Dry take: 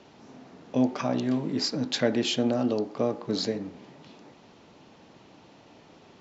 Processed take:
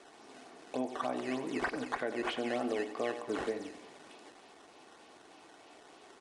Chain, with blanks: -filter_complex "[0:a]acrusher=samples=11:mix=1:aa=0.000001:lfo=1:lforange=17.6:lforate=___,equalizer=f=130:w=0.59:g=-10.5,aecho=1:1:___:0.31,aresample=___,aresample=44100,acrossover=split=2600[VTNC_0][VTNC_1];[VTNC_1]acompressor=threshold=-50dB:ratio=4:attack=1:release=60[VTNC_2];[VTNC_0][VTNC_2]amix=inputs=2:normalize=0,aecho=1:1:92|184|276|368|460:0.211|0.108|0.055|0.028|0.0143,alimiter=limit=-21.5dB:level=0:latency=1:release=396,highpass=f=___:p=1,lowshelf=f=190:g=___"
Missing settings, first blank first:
3.3, 2.7, 22050, 69, -8